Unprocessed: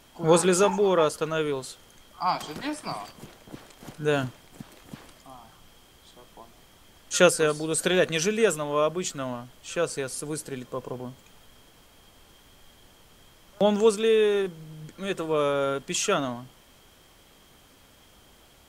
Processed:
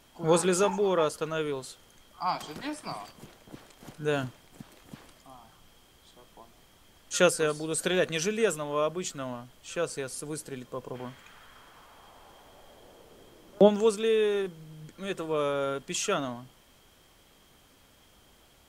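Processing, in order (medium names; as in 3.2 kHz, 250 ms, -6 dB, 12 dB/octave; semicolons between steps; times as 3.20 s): 10.94–13.67 s: peaking EQ 2 kHz -> 310 Hz +13.5 dB 1.7 oct; trim -4 dB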